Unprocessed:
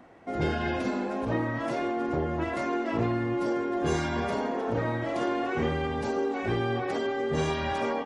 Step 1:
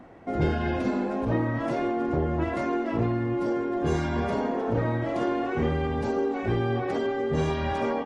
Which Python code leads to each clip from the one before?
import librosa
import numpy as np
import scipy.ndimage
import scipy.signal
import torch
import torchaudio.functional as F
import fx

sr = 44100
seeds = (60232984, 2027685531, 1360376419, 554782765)

y = fx.tilt_eq(x, sr, slope=-1.5)
y = fx.rider(y, sr, range_db=4, speed_s=0.5)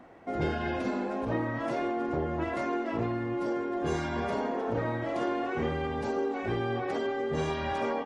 y = fx.low_shelf(x, sr, hz=270.0, db=-7.5)
y = y * 10.0 ** (-1.5 / 20.0)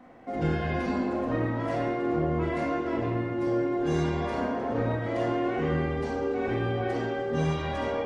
y = fx.room_shoebox(x, sr, seeds[0], volume_m3=740.0, walls='mixed', distance_m=2.0)
y = y * 10.0 ** (-3.0 / 20.0)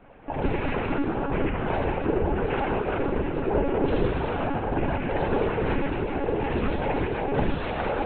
y = fx.noise_vocoder(x, sr, seeds[1], bands=8)
y = fx.echo_split(y, sr, split_hz=710.0, low_ms=190, high_ms=82, feedback_pct=52, wet_db=-12)
y = fx.lpc_monotone(y, sr, seeds[2], pitch_hz=280.0, order=16)
y = y * 10.0 ** (3.0 / 20.0)